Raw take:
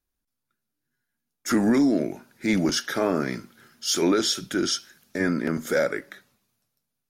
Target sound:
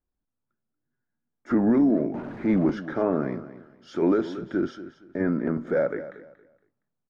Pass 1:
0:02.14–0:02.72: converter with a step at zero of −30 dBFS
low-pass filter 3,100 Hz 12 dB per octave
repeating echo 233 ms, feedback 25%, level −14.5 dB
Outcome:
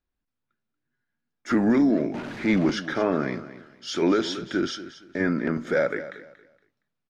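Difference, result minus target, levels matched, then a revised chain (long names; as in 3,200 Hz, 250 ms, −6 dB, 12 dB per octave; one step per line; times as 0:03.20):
4,000 Hz band +16.0 dB
0:02.14–0:02.72: converter with a step at zero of −30 dBFS
low-pass filter 1,100 Hz 12 dB per octave
repeating echo 233 ms, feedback 25%, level −14.5 dB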